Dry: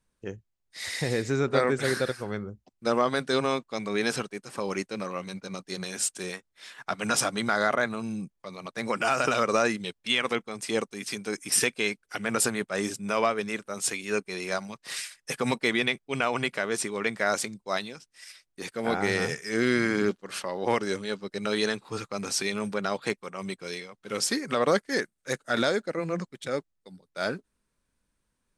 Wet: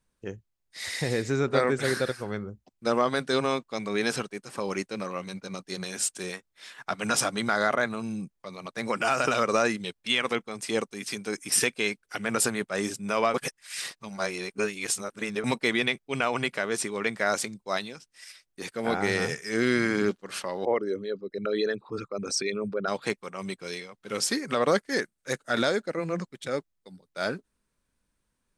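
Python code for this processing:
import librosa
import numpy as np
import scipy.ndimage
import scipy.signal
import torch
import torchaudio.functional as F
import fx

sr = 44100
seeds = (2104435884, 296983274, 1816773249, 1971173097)

y = fx.envelope_sharpen(x, sr, power=2.0, at=(20.65, 22.88))
y = fx.edit(y, sr, fx.reverse_span(start_s=13.34, length_s=2.1), tone=tone)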